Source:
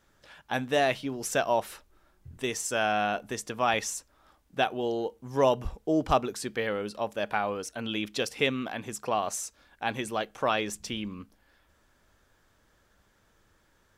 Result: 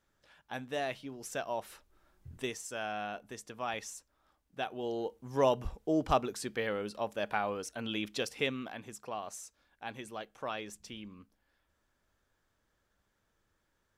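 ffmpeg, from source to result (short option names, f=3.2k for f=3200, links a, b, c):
-af "volume=5dB,afade=t=in:st=1.56:d=0.77:silence=0.375837,afade=t=out:st=2.33:d=0.25:silence=0.354813,afade=t=in:st=4.6:d=0.51:silence=0.446684,afade=t=out:st=8.03:d=1.06:silence=0.421697"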